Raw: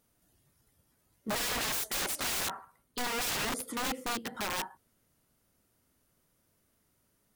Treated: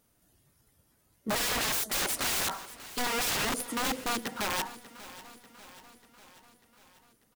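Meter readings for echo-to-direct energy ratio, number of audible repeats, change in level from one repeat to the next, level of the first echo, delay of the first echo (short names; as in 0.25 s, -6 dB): -15.0 dB, 4, -4.5 dB, -17.0 dB, 0.592 s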